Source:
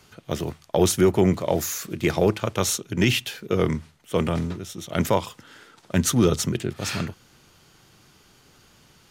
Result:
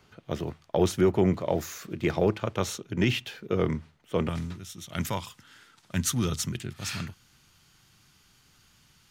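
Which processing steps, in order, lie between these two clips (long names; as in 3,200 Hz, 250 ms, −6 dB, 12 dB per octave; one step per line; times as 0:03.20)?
parametric band 11,000 Hz −11 dB 1.8 octaves, from 0:04.29 470 Hz
level −4 dB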